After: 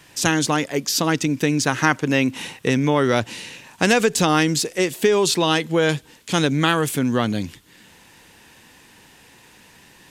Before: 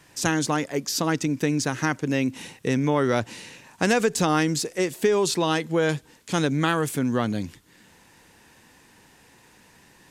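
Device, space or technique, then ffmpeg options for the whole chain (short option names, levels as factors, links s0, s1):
presence and air boost: -filter_complex "[0:a]asettb=1/sr,asplit=3[s0][s1][s2];[s0]atrim=end=1.674[s3];[s1]atrim=start=1.67:end=2.7,asetpts=PTS-STARTPTS,afade=t=in:d=0.004:c=qsin,afade=t=out:st=1.026:d=0.004:c=qsin,equalizer=f=1100:t=o:w=1.7:g=5[s4];[s2]atrim=start=2.696[s5];[s3][s4]acrossfade=d=0.004:c1=hsin:c2=qsin[s6];[s6][s5]acrossfade=d=0.004:c1=qsin:c2=hsin,equalizer=f=3100:t=o:w=0.97:g=5,highshelf=f=12000:g=5,volume=1.5"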